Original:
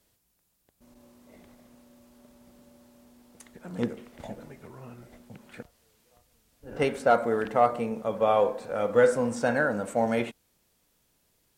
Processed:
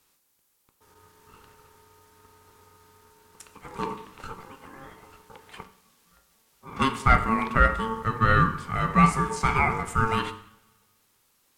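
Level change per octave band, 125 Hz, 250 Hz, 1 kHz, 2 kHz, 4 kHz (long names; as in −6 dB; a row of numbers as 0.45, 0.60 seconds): +12.0, +2.5, +5.0, +5.5, +7.0 decibels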